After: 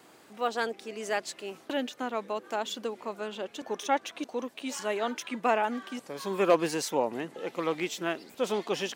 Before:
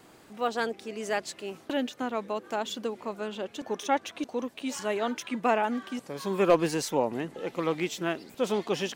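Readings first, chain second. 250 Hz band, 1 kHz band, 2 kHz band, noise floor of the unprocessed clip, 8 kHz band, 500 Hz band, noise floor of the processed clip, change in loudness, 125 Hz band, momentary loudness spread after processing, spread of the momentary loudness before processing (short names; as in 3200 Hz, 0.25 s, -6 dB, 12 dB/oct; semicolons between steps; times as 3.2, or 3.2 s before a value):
-3.0 dB, -0.5 dB, 0.0 dB, -55 dBFS, 0.0 dB, -1.0 dB, -56 dBFS, -1.0 dB, -5.5 dB, 10 LU, 9 LU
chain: HPF 280 Hz 6 dB/oct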